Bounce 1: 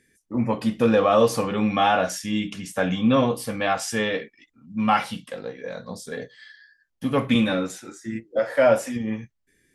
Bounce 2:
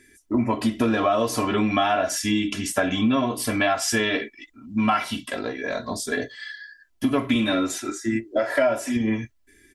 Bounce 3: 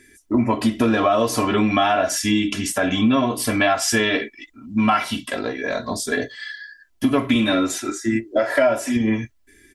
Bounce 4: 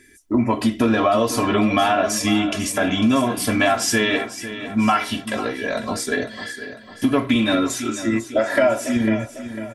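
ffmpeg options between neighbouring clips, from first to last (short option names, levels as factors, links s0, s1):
-af "bandreject=f=510:w=12,aecho=1:1:3:0.82,acompressor=threshold=0.0501:ratio=5,volume=2.24"
-af "alimiter=level_in=2.82:limit=0.891:release=50:level=0:latency=1,volume=0.531"
-af "aecho=1:1:499|998|1497|1996|2495:0.237|0.109|0.0502|0.0231|0.0106"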